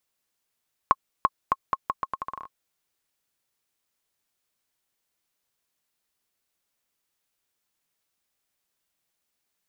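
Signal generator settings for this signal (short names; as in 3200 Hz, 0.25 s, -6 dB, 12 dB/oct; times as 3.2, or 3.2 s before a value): bouncing ball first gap 0.34 s, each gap 0.79, 1080 Hz, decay 39 ms -5 dBFS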